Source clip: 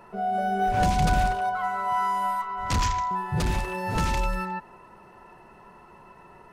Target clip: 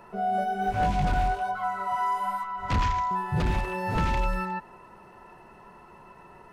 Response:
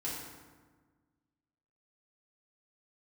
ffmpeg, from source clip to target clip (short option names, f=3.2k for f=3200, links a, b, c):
-filter_complex "[0:a]asplit=3[a][b][c];[a]afade=t=out:st=0.43:d=0.02[d];[b]flanger=delay=19:depth=4.3:speed=1.2,afade=t=in:st=0.43:d=0.02,afade=t=out:st=2.68:d=0.02[e];[c]afade=t=in:st=2.68:d=0.02[f];[d][e][f]amix=inputs=3:normalize=0,asoftclip=type=hard:threshold=-18dB,acrossover=split=3700[g][h];[h]acompressor=threshold=-51dB:ratio=4:attack=1:release=60[i];[g][i]amix=inputs=2:normalize=0"